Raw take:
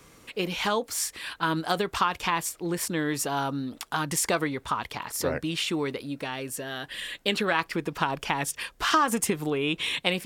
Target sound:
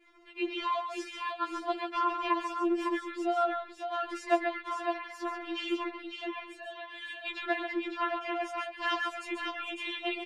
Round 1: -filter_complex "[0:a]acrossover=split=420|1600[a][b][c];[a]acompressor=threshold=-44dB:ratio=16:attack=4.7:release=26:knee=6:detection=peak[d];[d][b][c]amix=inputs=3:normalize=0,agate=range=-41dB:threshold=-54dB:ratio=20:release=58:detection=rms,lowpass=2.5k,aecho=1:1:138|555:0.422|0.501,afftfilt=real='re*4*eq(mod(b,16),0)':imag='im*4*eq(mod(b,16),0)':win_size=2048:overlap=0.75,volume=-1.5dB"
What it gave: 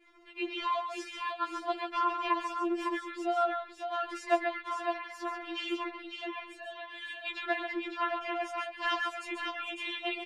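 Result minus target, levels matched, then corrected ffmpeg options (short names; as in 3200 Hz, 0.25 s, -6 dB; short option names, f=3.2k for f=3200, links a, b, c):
compressor: peak gain reduction +8 dB
-filter_complex "[0:a]acrossover=split=420|1600[a][b][c];[a]acompressor=threshold=-35.5dB:ratio=16:attack=4.7:release=26:knee=6:detection=peak[d];[d][b][c]amix=inputs=3:normalize=0,agate=range=-41dB:threshold=-54dB:ratio=20:release=58:detection=rms,lowpass=2.5k,aecho=1:1:138|555:0.422|0.501,afftfilt=real='re*4*eq(mod(b,16),0)':imag='im*4*eq(mod(b,16),0)':win_size=2048:overlap=0.75,volume=-1.5dB"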